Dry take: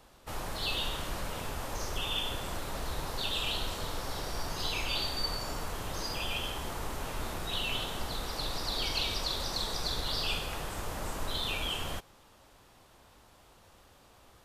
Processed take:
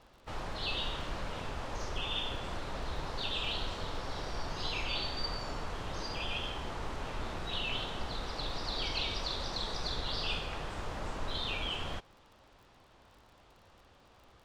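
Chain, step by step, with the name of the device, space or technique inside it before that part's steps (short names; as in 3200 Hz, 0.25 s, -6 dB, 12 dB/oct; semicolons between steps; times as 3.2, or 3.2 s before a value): lo-fi chain (LPF 4700 Hz 12 dB/oct; wow and flutter 26 cents; crackle 39/s -50 dBFS); gain -1.5 dB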